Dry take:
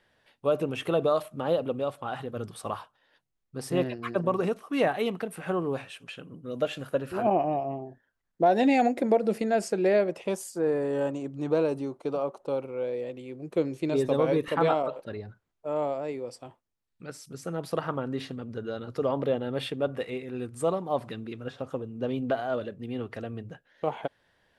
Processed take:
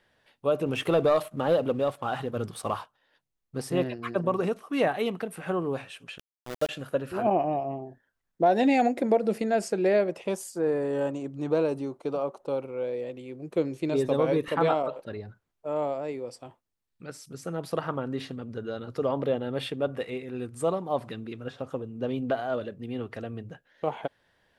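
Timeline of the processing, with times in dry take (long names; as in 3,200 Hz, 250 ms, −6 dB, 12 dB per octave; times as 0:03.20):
0:00.66–0:03.62: leveller curve on the samples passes 1
0:06.18–0:06.69: centre clipping without the shift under −31 dBFS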